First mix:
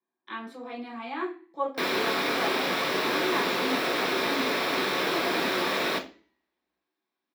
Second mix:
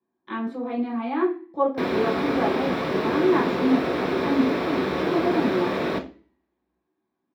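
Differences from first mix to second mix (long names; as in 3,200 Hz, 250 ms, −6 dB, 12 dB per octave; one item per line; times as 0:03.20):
speech +5.0 dB
master: add spectral tilt −4 dB per octave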